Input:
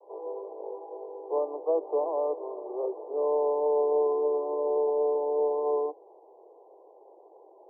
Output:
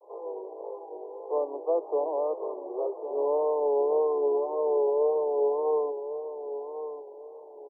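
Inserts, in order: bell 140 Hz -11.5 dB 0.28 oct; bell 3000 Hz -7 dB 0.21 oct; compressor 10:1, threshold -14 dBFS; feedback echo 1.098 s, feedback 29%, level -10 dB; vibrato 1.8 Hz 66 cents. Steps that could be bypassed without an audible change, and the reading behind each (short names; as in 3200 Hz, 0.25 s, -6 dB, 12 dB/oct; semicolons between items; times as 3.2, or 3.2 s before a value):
bell 140 Hz: input band starts at 290 Hz; bell 3000 Hz: input band ends at 1100 Hz; compressor, threshold -14 dBFS: input peak -17.0 dBFS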